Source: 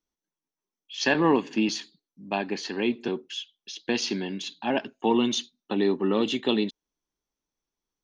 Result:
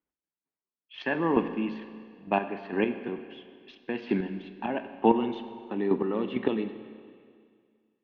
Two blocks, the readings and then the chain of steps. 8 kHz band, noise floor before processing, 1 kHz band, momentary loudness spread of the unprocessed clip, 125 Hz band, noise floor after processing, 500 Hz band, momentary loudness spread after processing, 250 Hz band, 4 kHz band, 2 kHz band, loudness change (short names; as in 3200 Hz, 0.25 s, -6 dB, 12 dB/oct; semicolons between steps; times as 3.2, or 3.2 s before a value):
n/a, under -85 dBFS, -0.5 dB, 11 LU, -2.0 dB, under -85 dBFS, -2.0 dB, 19 LU, -2.5 dB, -15.0 dB, -5.0 dB, -2.5 dB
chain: HPF 54 Hz; in parallel at -5.5 dB: crossover distortion -45 dBFS; on the sum: chopper 2.2 Hz, depth 65%, duty 25%; LPF 2400 Hz 24 dB/oct; Schroeder reverb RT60 2.1 s, combs from 32 ms, DRR 10 dB